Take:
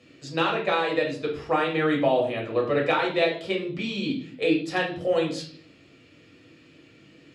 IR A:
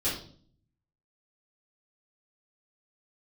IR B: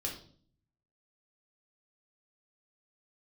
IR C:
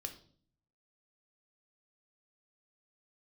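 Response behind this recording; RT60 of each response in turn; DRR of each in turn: B; 0.50, 0.50, 0.50 s; -11.5, -1.5, 5.5 dB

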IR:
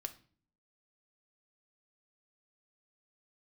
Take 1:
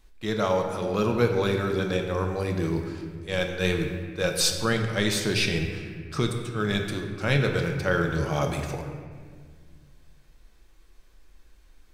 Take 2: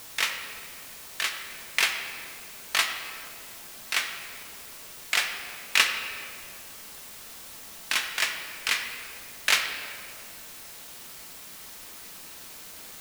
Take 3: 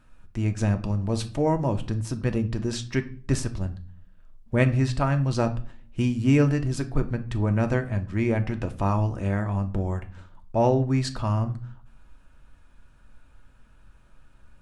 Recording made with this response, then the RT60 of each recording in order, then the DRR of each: 3; 1.8, 2.7, 0.45 s; 3.0, 3.5, 6.5 dB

